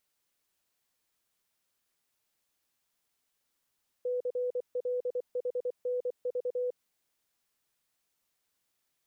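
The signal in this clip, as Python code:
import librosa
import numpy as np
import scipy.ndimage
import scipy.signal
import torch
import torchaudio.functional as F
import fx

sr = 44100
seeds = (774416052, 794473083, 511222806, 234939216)

y = fx.morse(sr, text='CLHNV', wpm=24, hz=496.0, level_db=-28.5)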